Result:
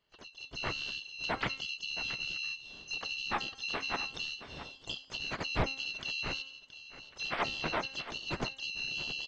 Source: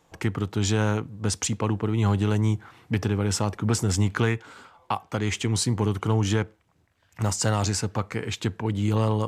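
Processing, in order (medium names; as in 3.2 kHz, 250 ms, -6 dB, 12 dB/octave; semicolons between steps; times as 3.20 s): split-band scrambler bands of 4 kHz; treble shelf 2.5 kHz -6 dB; harmony voices -7 st -1 dB, +4 st -13 dB, +7 st -5 dB; de-hum 267.2 Hz, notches 36; compression 4:1, threshold -37 dBFS, peak gain reduction 15.5 dB; tape spacing loss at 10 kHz 43 dB; delay 673 ms -13 dB; level rider gain up to 16 dB; loudspeaker Doppler distortion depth 0.25 ms; trim -2 dB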